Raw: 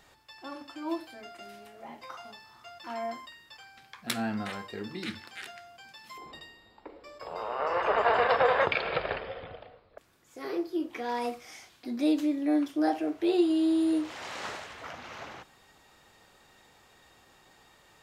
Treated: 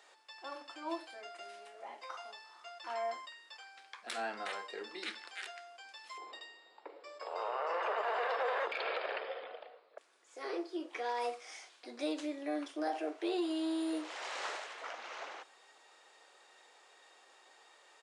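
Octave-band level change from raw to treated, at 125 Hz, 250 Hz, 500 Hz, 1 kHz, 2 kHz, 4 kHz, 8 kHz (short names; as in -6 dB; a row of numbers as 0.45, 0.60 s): under -25 dB, -11.5 dB, -7.5 dB, -6.5 dB, -6.5 dB, -4.5 dB, -5.0 dB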